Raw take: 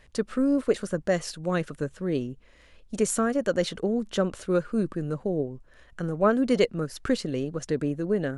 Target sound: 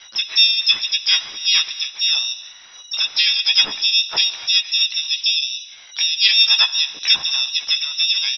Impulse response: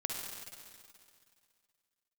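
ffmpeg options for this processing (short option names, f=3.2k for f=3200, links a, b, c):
-filter_complex "[0:a]asplit=2[a][b];[b]acompressor=threshold=-34dB:ratio=10,volume=0.5dB[c];[a][c]amix=inputs=2:normalize=0,tremolo=f=2.5:d=0.29,lowpass=f=3.3k:t=q:w=0.5098,lowpass=f=3.3k:t=q:w=0.6013,lowpass=f=3.3k:t=q:w=0.9,lowpass=f=3.3k:t=q:w=2.563,afreqshift=-3900,asplit=2[d][e];[e]adelay=14,volume=-5dB[f];[d][f]amix=inputs=2:normalize=0,asplit=2[g][h];[1:a]atrim=start_sample=2205,afade=t=out:st=0.38:d=0.01,atrim=end_sample=17199[i];[h][i]afir=irnorm=-1:irlink=0,volume=-11.5dB[j];[g][j]amix=inputs=2:normalize=0,asplit=3[k][l][m];[l]asetrate=33038,aresample=44100,atempo=1.33484,volume=-8dB[n];[m]asetrate=66075,aresample=44100,atempo=0.66742,volume=-2dB[o];[k][n][o]amix=inputs=3:normalize=0,volume=2dB"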